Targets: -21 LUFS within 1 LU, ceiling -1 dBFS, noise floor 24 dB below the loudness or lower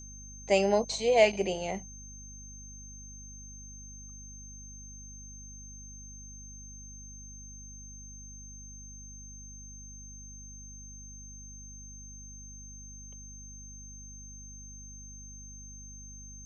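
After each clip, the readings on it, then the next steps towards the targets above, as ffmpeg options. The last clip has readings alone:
hum 50 Hz; highest harmonic 250 Hz; hum level -46 dBFS; steady tone 6.3 kHz; tone level -47 dBFS; loudness -36.5 LUFS; peak level -9.5 dBFS; loudness target -21.0 LUFS
-> -af "bandreject=f=50:t=h:w=6,bandreject=f=100:t=h:w=6,bandreject=f=150:t=h:w=6,bandreject=f=200:t=h:w=6,bandreject=f=250:t=h:w=6"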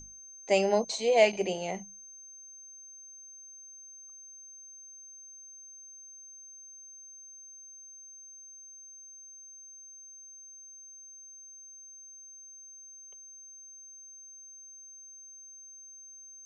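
hum not found; steady tone 6.3 kHz; tone level -47 dBFS
-> -af "bandreject=f=6300:w=30"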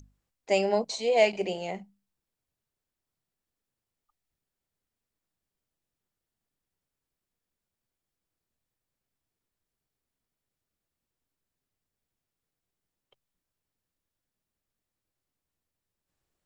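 steady tone not found; loudness -26.5 LUFS; peak level -9.5 dBFS; loudness target -21.0 LUFS
-> -af "volume=1.88"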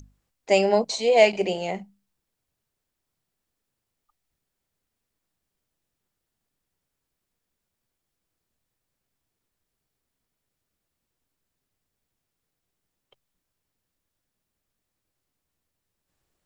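loudness -21.5 LUFS; peak level -4.0 dBFS; noise floor -83 dBFS

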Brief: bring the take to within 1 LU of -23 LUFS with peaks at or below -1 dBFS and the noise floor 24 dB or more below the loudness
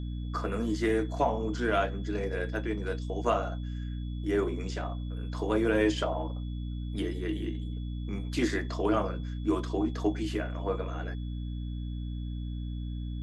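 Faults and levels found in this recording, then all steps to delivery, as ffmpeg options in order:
hum 60 Hz; highest harmonic 300 Hz; hum level -33 dBFS; steady tone 3.4 kHz; tone level -56 dBFS; loudness -32.0 LUFS; peak level -14.0 dBFS; loudness target -23.0 LUFS
-> -af "bandreject=f=60:t=h:w=6,bandreject=f=120:t=h:w=6,bandreject=f=180:t=h:w=6,bandreject=f=240:t=h:w=6,bandreject=f=300:t=h:w=6"
-af "bandreject=f=3400:w=30"
-af "volume=2.82"

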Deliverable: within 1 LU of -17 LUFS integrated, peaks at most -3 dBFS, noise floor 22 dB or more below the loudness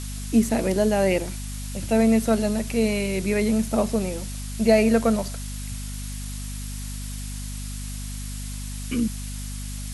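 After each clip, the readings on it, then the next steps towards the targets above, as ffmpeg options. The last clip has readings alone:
hum 50 Hz; highest harmonic 250 Hz; hum level -30 dBFS; noise floor -32 dBFS; noise floor target -47 dBFS; loudness -25.0 LUFS; peak level -5.5 dBFS; loudness target -17.0 LUFS
-> -af "bandreject=f=50:t=h:w=6,bandreject=f=100:t=h:w=6,bandreject=f=150:t=h:w=6,bandreject=f=200:t=h:w=6,bandreject=f=250:t=h:w=6"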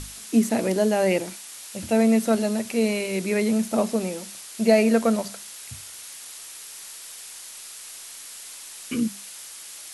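hum not found; noise floor -41 dBFS; noise floor target -45 dBFS
-> -af "afftdn=nr=6:nf=-41"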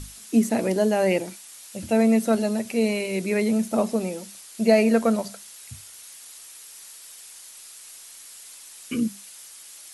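noise floor -45 dBFS; loudness -23.0 LUFS; peak level -5.5 dBFS; loudness target -17.0 LUFS
-> -af "volume=2,alimiter=limit=0.708:level=0:latency=1"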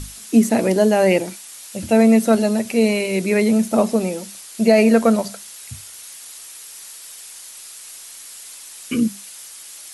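loudness -17.0 LUFS; peak level -3.0 dBFS; noise floor -39 dBFS

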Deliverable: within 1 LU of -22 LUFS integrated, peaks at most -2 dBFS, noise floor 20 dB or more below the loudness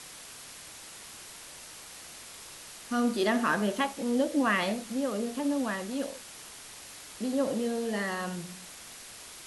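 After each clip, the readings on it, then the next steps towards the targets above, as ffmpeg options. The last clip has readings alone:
noise floor -47 dBFS; noise floor target -50 dBFS; loudness -30.0 LUFS; peak level -15.0 dBFS; loudness target -22.0 LUFS
-> -af "afftdn=nr=6:nf=-47"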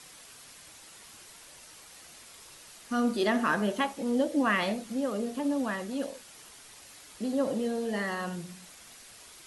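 noise floor -52 dBFS; loudness -30.0 LUFS; peak level -15.0 dBFS; loudness target -22.0 LUFS
-> -af "volume=2.51"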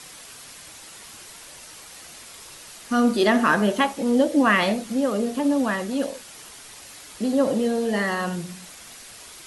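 loudness -22.0 LUFS; peak level -7.0 dBFS; noise floor -44 dBFS

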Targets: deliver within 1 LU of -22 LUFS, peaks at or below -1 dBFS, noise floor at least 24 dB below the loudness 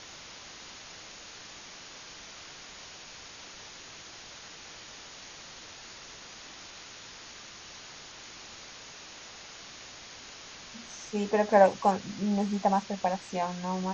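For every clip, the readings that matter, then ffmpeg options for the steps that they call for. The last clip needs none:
noise floor -48 dBFS; noise floor target -52 dBFS; loudness -28.0 LUFS; peak level -8.0 dBFS; loudness target -22.0 LUFS
-> -af "afftdn=nr=6:nf=-48"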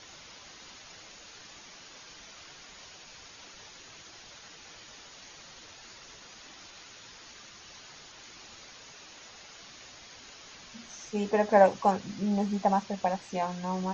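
noise floor -51 dBFS; noise floor target -52 dBFS
-> -af "afftdn=nr=6:nf=-51"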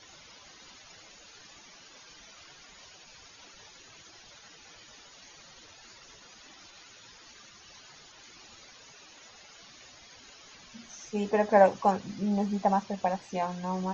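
noise floor -54 dBFS; loudness -27.5 LUFS; peak level -8.0 dBFS; loudness target -22.0 LUFS
-> -af "volume=1.88"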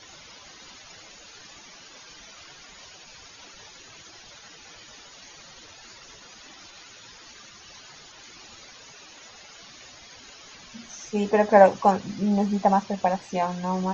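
loudness -22.0 LUFS; peak level -3.0 dBFS; noise floor -48 dBFS

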